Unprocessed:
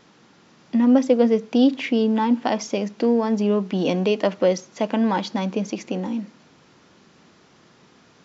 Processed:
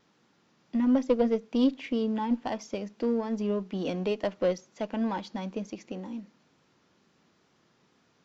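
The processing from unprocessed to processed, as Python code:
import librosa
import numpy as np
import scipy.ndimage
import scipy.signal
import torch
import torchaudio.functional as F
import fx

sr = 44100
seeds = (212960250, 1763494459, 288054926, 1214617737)

y = fx.diode_clip(x, sr, knee_db=-10.0)
y = fx.wow_flutter(y, sr, seeds[0], rate_hz=2.1, depth_cents=24.0)
y = fx.upward_expand(y, sr, threshold_db=-30.0, expansion=1.5)
y = F.gain(torch.from_numpy(y), -5.0).numpy()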